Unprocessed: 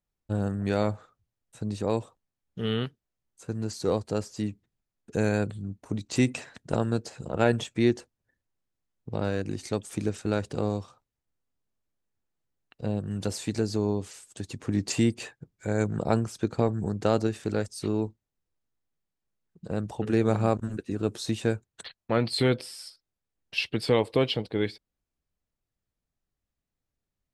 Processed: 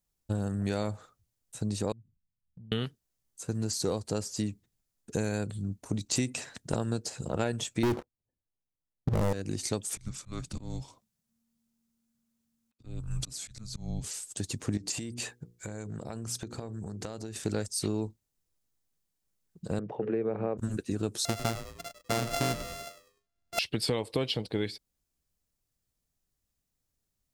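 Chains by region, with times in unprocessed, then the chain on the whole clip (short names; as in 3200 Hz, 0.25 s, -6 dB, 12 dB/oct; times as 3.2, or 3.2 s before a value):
1.92–2.72 inverse Chebyshev low-pass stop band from 530 Hz, stop band 50 dB + compressor 16:1, threshold -47 dBFS
7.83–9.33 LPF 1000 Hz 24 dB/oct + sample leveller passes 5
9.96–14.04 frequency shift -230 Hz + auto swell 0.402 s
14.77–17.36 notches 60/120/180/240/300/360/420/480 Hz + compressor 12:1, threshold -35 dBFS
19.79–20.58 Chebyshev band-pass 130–2300 Hz, order 3 + bell 450 Hz +10 dB 0.75 oct + compressor 1.5:1, threshold -37 dBFS
21.25–23.59 sample sorter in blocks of 64 samples + high shelf 7200 Hz -11.5 dB + frequency-shifting echo 0.1 s, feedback 34%, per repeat -94 Hz, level -13.5 dB
whole clip: tone controls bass +2 dB, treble +10 dB; compressor, threshold -26 dBFS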